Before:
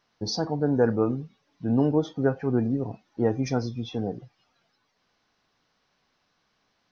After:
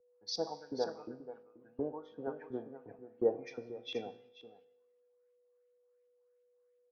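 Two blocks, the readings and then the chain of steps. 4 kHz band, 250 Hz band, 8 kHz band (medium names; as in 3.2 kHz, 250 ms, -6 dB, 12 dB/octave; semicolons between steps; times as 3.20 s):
-7.0 dB, -19.0 dB, no reading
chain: compression 3:1, threshold -30 dBFS, peak gain reduction 10.5 dB; LFO band-pass saw up 2.8 Hz 360–3100 Hz; feedback comb 51 Hz, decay 1.5 s, harmonics all, mix 60%; whistle 490 Hz -57 dBFS; on a send: delay 483 ms -8 dB; on the sum: three bands expanded up and down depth 100%; trim +4.5 dB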